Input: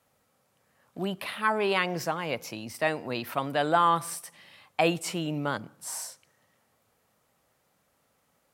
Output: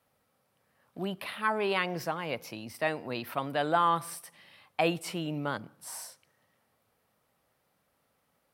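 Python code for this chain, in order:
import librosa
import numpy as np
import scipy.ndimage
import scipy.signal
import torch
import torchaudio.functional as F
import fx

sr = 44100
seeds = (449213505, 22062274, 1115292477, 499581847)

y = fx.peak_eq(x, sr, hz=7000.0, db=-7.0, octaves=0.48)
y = y * 10.0 ** (-3.0 / 20.0)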